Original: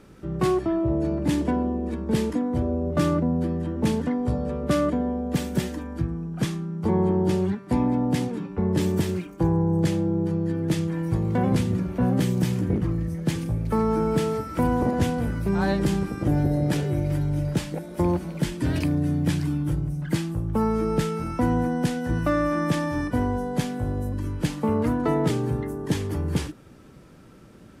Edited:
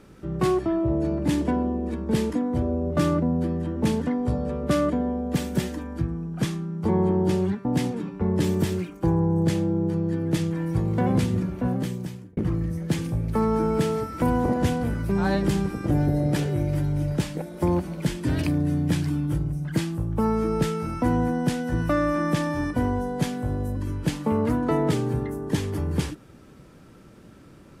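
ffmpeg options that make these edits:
ffmpeg -i in.wav -filter_complex "[0:a]asplit=3[link_01][link_02][link_03];[link_01]atrim=end=7.652[link_04];[link_02]atrim=start=8.018:end=12.74,asetpts=PTS-STARTPTS,afade=type=out:start_time=3.742:duration=0.98[link_05];[link_03]atrim=start=12.74,asetpts=PTS-STARTPTS,afade=type=in:duration=0.004:curve=hsin[link_06];[link_05][link_06]concat=n=2:v=0:a=1[link_07];[link_04][link_07]acrossfade=duration=0.004:curve1=hsin:curve2=hsin" out.wav

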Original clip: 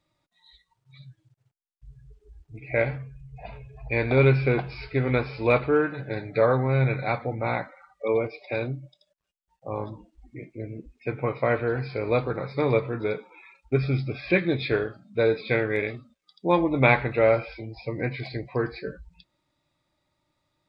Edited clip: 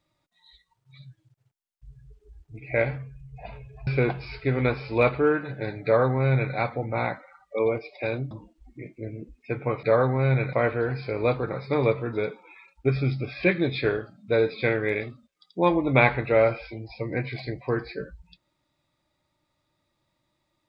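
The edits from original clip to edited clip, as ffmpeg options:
ffmpeg -i in.wav -filter_complex "[0:a]asplit=5[link_01][link_02][link_03][link_04][link_05];[link_01]atrim=end=3.872[link_06];[link_02]atrim=start=4.358:end=8.802[link_07];[link_03]atrim=start=9.878:end=11.402[link_08];[link_04]atrim=start=6.328:end=7.032[link_09];[link_05]atrim=start=11.398[link_10];[link_06][link_07]acrossfade=duration=0.004:curve1=hsin:curve2=hsin[link_11];[link_11][link_08]acrossfade=duration=0.004:curve1=hsin:curve2=hsin[link_12];[link_12][link_09]acrossfade=duration=0.004:curve1=hsin:curve2=hsin[link_13];[link_13][link_10]acrossfade=duration=0.004:curve1=hsin:curve2=hsin" out.wav

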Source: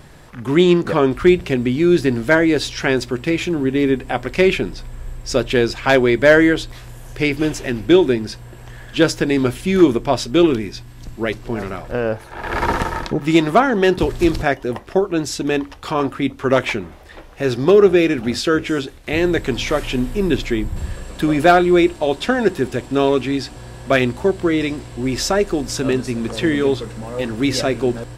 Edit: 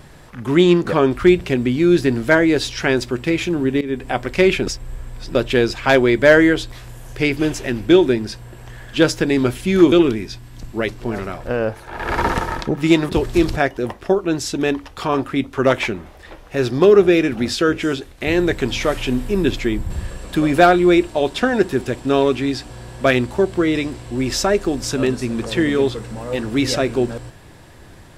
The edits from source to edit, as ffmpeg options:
ffmpeg -i in.wav -filter_complex "[0:a]asplit=6[link_01][link_02][link_03][link_04][link_05][link_06];[link_01]atrim=end=3.81,asetpts=PTS-STARTPTS,afade=type=out:start_time=3.806:duration=0.004:curve=hsin:silence=0.133352[link_07];[link_02]atrim=start=3.81:end=4.672,asetpts=PTS-STARTPTS,afade=type=in:duration=0.25:silence=0.133352[link_08];[link_03]atrim=start=4.668:end=5.352,asetpts=PTS-STARTPTS,areverse[link_09];[link_04]atrim=start=5.348:end=9.922[link_10];[link_05]atrim=start=10.358:end=13.532[link_11];[link_06]atrim=start=13.948[link_12];[link_07][link_08]concat=n=2:v=0:a=1[link_13];[link_13][link_09]acrossfade=duration=0.004:curve1=hsin:curve2=hsin[link_14];[link_14][link_10]acrossfade=duration=0.004:curve1=hsin:curve2=hsin[link_15];[link_15][link_11]acrossfade=duration=0.004:curve1=hsin:curve2=hsin[link_16];[link_16][link_12]acrossfade=duration=0.004:curve1=hsin:curve2=hsin" out.wav

